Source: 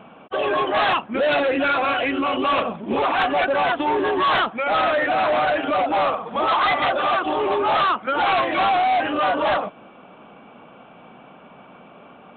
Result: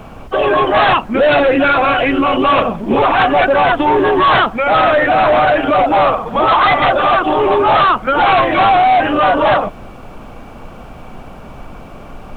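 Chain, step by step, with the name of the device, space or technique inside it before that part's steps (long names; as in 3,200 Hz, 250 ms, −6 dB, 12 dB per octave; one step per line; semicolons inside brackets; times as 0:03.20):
car interior (parametric band 120 Hz +8.5 dB 0.55 octaves; high-shelf EQ 3,000 Hz −6 dB; brown noise bed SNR 20 dB)
level +9 dB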